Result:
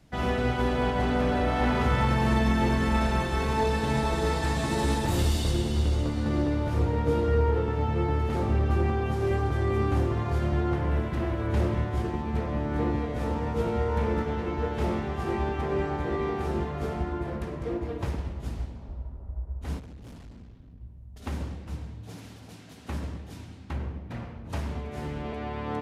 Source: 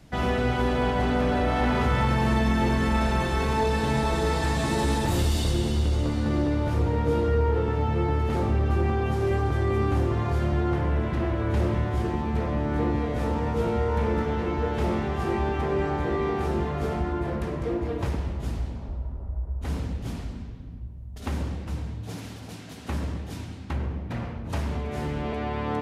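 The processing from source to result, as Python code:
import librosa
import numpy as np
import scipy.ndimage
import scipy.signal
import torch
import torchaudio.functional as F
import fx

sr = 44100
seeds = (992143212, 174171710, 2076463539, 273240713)

y = fx.high_shelf(x, sr, hz=8900.0, db=8.0, at=(10.91, 11.47))
y = fx.tube_stage(y, sr, drive_db=34.0, bias=0.55, at=(19.79, 20.81))
y = fx.upward_expand(y, sr, threshold_db=-33.0, expansion=1.5)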